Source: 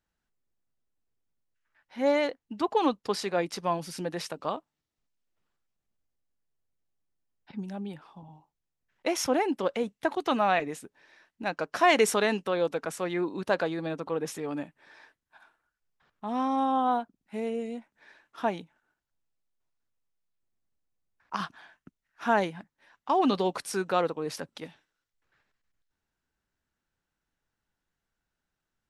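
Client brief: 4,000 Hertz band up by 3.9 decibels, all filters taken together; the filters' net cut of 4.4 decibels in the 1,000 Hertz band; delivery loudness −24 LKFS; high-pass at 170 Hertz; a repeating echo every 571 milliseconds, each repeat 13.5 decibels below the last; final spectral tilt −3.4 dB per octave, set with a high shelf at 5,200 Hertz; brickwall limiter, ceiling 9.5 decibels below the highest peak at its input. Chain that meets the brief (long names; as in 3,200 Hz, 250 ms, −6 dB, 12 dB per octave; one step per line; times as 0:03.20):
high-pass filter 170 Hz
parametric band 1,000 Hz −6.5 dB
parametric band 4,000 Hz +4 dB
high-shelf EQ 5,200 Hz +3.5 dB
brickwall limiter −19.5 dBFS
repeating echo 571 ms, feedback 21%, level −13.5 dB
level +8.5 dB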